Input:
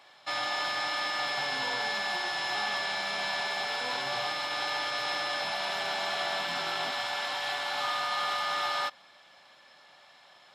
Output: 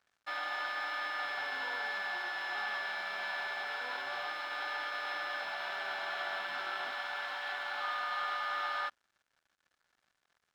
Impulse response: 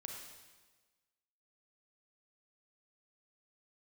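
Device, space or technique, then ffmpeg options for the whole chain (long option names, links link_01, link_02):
pocket radio on a weak battery: -af "highpass=290,lowpass=3800,aeval=exprs='sgn(val(0))*max(abs(val(0))-0.00224,0)':channel_layout=same,equalizer=frequency=1500:width_type=o:width=0.51:gain=9,volume=-7.5dB"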